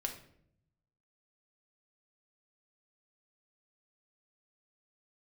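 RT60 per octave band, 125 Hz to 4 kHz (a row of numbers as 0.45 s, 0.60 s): 1.4 s, 1.0 s, 0.80 s, 0.55 s, 0.55 s, 0.45 s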